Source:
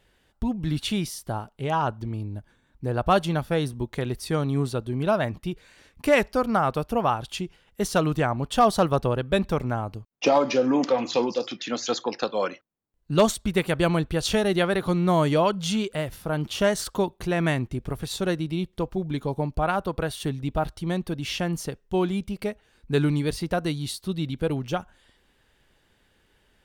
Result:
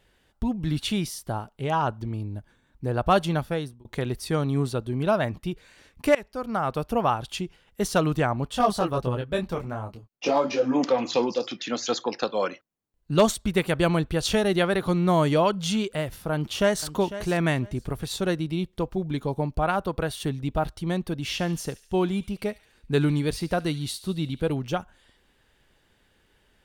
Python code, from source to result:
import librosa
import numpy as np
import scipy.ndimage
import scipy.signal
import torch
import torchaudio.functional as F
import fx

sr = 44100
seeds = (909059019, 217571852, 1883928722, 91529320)

y = fx.detune_double(x, sr, cents=fx.line((8.5, 12.0), (10.74, 27.0)), at=(8.5, 10.74), fade=0.02)
y = fx.echo_throw(y, sr, start_s=16.32, length_s=0.55, ms=500, feedback_pct=20, wet_db=-13.5)
y = fx.echo_wet_highpass(y, sr, ms=71, feedback_pct=57, hz=2500.0, wet_db=-14.5, at=(21.25, 24.52))
y = fx.edit(y, sr, fx.fade_out_span(start_s=3.4, length_s=0.45),
    fx.fade_in_from(start_s=6.15, length_s=0.76, floor_db=-21.0), tone=tone)